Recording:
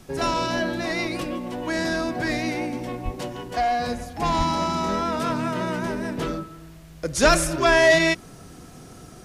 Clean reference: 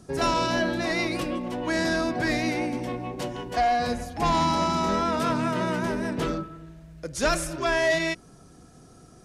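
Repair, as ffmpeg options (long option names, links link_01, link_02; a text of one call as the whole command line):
ffmpeg -i in.wav -filter_complex "[0:a]asplit=3[link_01][link_02][link_03];[link_01]afade=type=out:start_time=3.04:duration=0.02[link_04];[link_02]highpass=frequency=140:width=0.5412,highpass=frequency=140:width=1.3066,afade=type=in:start_time=3.04:duration=0.02,afade=type=out:start_time=3.16:duration=0.02[link_05];[link_03]afade=type=in:start_time=3.16:duration=0.02[link_06];[link_04][link_05][link_06]amix=inputs=3:normalize=0,asplit=3[link_07][link_08][link_09];[link_07]afade=type=out:start_time=4.37:duration=0.02[link_10];[link_08]highpass=frequency=140:width=0.5412,highpass=frequency=140:width=1.3066,afade=type=in:start_time=4.37:duration=0.02,afade=type=out:start_time=4.49:duration=0.02[link_11];[link_09]afade=type=in:start_time=4.49:duration=0.02[link_12];[link_10][link_11][link_12]amix=inputs=3:normalize=0,agate=range=-21dB:threshold=-35dB,asetnsamples=nb_out_samples=441:pad=0,asendcmd='7.03 volume volume -7dB',volume=0dB" out.wav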